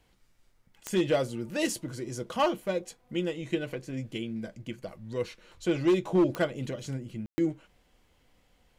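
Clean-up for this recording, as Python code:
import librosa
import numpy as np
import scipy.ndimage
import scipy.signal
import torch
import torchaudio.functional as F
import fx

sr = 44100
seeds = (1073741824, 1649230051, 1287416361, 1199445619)

y = fx.fix_declip(x, sr, threshold_db=-18.0)
y = fx.fix_declick_ar(y, sr, threshold=10.0)
y = fx.fix_ambience(y, sr, seeds[0], print_start_s=0.16, print_end_s=0.66, start_s=7.26, end_s=7.38)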